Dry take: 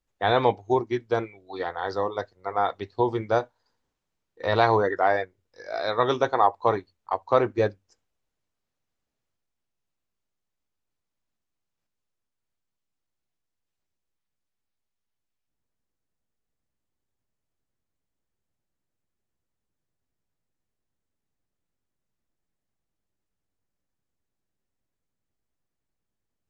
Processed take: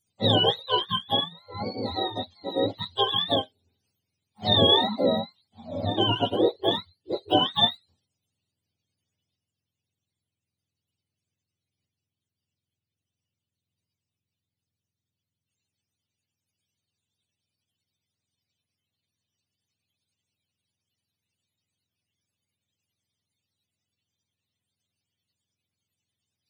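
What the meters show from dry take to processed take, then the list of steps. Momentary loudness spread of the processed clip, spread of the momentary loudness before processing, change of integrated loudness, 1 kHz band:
14 LU, 11 LU, +1.0 dB, −4.0 dB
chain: frequency axis turned over on the octave scale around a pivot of 620 Hz
high shelf with overshoot 2,100 Hz +13 dB, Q 1.5

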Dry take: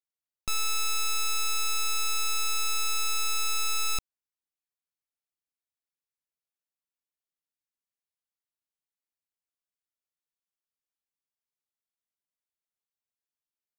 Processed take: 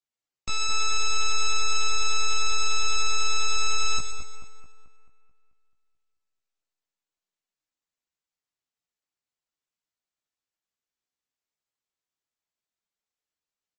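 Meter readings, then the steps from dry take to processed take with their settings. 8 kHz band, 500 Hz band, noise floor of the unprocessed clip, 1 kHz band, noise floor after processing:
+2.0 dB, +7.5 dB, below −85 dBFS, +4.0 dB, below −85 dBFS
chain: dynamic equaliser 1,700 Hz, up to −3 dB, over −47 dBFS, Q 0.94
double-tracking delay 16 ms −3 dB
echo with a time of its own for lows and highs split 2,000 Hz, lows 218 ms, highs 122 ms, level −6.5 dB
MP3 32 kbit/s 48,000 Hz

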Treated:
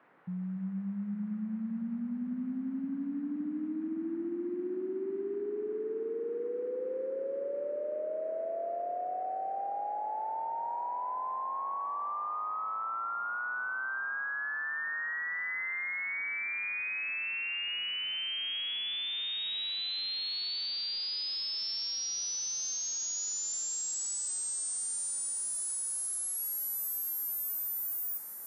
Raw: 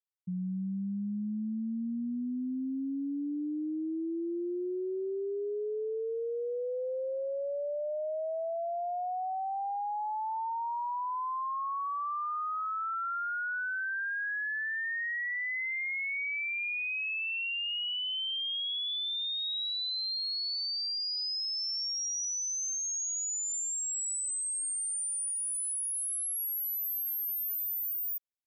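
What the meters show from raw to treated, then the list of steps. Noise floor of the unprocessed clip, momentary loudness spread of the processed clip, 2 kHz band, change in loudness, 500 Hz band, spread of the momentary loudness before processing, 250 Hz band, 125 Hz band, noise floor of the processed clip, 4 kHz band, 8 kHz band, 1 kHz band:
−34 dBFS, 4 LU, −1.5 dB, −1.5 dB, −1.0 dB, 4 LU, −1.0 dB, can't be measured, −37 dBFS, −1.5 dB, −1.5 dB, −1.5 dB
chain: noise in a band 150–1,800 Hz −62 dBFS
delay that swaps between a low-pass and a high-pass 283 ms, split 870 Hz, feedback 86%, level −10 dB
level −2 dB

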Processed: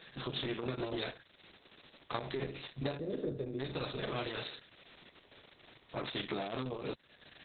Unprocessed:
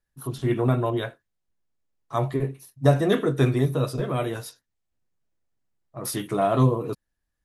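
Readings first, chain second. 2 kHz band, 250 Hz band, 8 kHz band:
−7.5 dB, −15.0 dB, below −40 dB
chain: compressor on every frequency bin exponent 0.6
meter weighting curve D
gain on a spectral selection 0:02.99–0:03.59, 640–8,100 Hz −20 dB
dynamic equaliser 9,900 Hz, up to −4 dB, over −49 dBFS, Q 2.4
downward compressor 3 to 1, threshold −39 dBFS, peak gain reduction 19.5 dB
Opus 6 kbit/s 48,000 Hz

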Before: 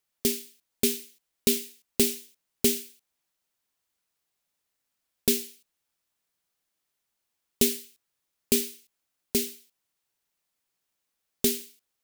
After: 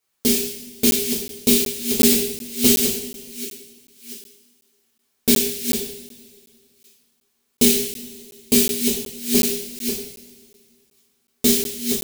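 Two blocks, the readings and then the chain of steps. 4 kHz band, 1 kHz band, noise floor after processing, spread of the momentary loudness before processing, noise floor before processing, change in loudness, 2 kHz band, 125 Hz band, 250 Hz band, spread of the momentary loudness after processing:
+10.0 dB, +11.0 dB, −70 dBFS, 11 LU, −82 dBFS, +8.5 dB, +9.5 dB, +9.0 dB, +11.5 dB, 17 LU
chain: delay that plays each chunk backwards 687 ms, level −6 dB
coupled-rooms reverb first 0.67 s, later 2.3 s, from −17 dB, DRR −8.5 dB
regular buffer underruns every 0.37 s, samples 512, zero, from 0:00.91

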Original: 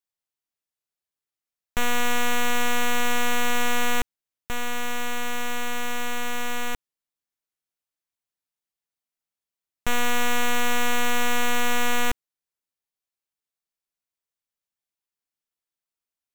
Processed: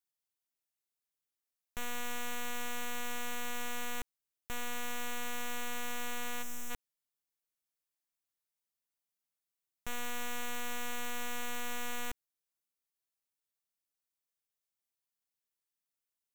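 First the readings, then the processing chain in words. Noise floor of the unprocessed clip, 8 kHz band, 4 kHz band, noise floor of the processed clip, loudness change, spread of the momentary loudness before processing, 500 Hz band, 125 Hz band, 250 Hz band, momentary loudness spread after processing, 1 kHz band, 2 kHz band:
below −85 dBFS, −11.0 dB, −14.0 dB, below −85 dBFS, −13.5 dB, 8 LU, −15.0 dB, −15.0 dB, −15.0 dB, 5 LU, −15.0 dB, −14.5 dB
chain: gain on a spectral selection 0:06.43–0:06.71, 240–4,700 Hz −10 dB
high-shelf EQ 6,200 Hz +6.5 dB
brickwall limiter −22.5 dBFS, peak gain reduction 11.5 dB
level −5 dB

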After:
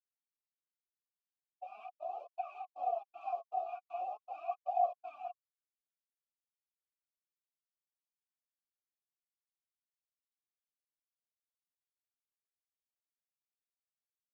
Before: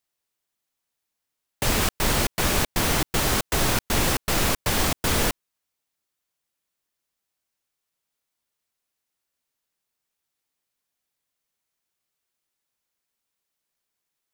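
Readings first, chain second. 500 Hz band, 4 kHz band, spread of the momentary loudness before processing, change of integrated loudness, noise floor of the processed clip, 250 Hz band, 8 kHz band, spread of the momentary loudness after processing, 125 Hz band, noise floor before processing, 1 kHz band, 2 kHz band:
−11.5 dB, below −40 dB, 1 LU, −17.0 dB, below −85 dBFS, below −40 dB, below −40 dB, 16 LU, below −40 dB, −83 dBFS, −7.0 dB, −33.5 dB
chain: fade in at the beginning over 3.23 s
notch filter 1,100 Hz, Q 19
flanger 0.42 Hz, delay 1.1 ms, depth 7.1 ms, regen +25%
bass and treble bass −5 dB, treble +9 dB
brickwall limiter −17.5 dBFS, peak gain reduction 7 dB
auto-filter notch square 1.5 Hz 510–1,900 Hz
formant filter a
every bin expanded away from the loudest bin 2.5 to 1
level +12 dB

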